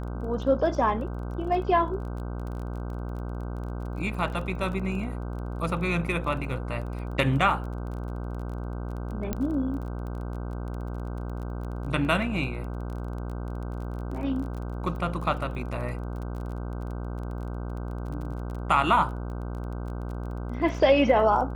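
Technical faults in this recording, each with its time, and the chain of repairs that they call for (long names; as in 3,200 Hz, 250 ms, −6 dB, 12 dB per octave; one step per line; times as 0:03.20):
mains buzz 60 Hz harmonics 26 −33 dBFS
surface crackle 21 per second −36 dBFS
0:09.33: click −15 dBFS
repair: click removal
hum removal 60 Hz, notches 26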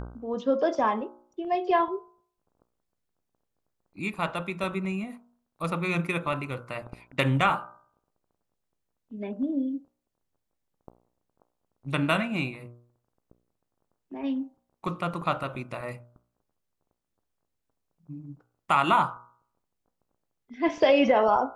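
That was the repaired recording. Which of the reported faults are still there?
none of them is left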